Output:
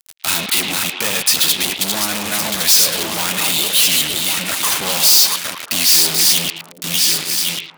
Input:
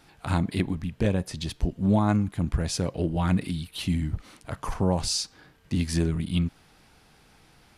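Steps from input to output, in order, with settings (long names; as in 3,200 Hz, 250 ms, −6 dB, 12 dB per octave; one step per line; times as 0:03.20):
feedback delay that plays each chunk backwards 555 ms, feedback 48%, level −6 dB
meter weighting curve D
fuzz pedal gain 40 dB, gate −41 dBFS
RIAA equalisation recording
on a send: echo through a band-pass that steps 111 ms, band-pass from 2,700 Hz, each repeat −1.4 octaves, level −4 dB
on the sum: level −6 dB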